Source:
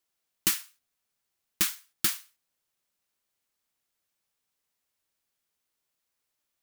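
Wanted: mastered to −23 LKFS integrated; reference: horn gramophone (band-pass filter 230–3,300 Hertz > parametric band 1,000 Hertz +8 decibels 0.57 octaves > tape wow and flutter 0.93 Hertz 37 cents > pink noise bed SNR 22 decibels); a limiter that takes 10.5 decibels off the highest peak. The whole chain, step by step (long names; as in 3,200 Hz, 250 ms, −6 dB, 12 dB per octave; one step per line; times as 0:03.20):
brickwall limiter −19 dBFS
band-pass filter 230–3,300 Hz
parametric band 1,000 Hz +8 dB 0.57 octaves
tape wow and flutter 0.93 Hz 37 cents
pink noise bed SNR 22 dB
level +20 dB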